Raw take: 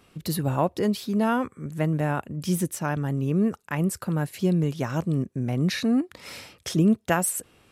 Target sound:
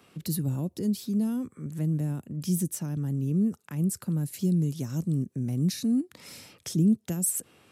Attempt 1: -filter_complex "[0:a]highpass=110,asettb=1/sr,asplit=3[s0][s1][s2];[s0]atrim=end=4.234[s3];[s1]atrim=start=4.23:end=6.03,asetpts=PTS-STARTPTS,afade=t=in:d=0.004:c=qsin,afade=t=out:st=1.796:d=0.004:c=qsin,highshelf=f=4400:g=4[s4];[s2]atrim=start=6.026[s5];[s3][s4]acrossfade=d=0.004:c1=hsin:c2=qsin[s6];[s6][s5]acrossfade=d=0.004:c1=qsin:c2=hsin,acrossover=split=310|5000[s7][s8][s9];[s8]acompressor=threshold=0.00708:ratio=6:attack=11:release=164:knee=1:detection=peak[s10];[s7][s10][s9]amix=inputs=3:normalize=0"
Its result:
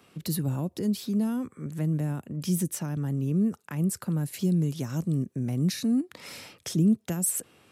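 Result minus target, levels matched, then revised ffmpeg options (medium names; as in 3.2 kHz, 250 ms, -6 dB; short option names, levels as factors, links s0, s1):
compression: peak gain reduction -7 dB
-filter_complex "[0:a]highpass=110,asettb=1/sr,asplit=3[s0][s1][s2];[s0]atrim=end=4.234[s3];[s1]atrim=start=4.23:end=6.03,asetpts=PTS-STARTPTS,afade=t=in:d=0.004:c=qsin,afade=t=out:st=1.796:d=0.004:c=qsin,highshelf=f=4400:g=4[s4];[s2]atrim=start=6.026[s5];[s3][s4]acrossfade=d=0.004:c1=hsin:c2=qsin[s6];[s6][s5]acrossfade=d=0.004:c1=qsin:c2=hsin,acrossover=split=310|5000[s7][s8][s9];[s8]acompressor=threshold=0.00266:ratio=6:attack=11:release=164:knee=1:detection=peak[s10];[s7][s10][s9]amix=inputs=3:normalize=0"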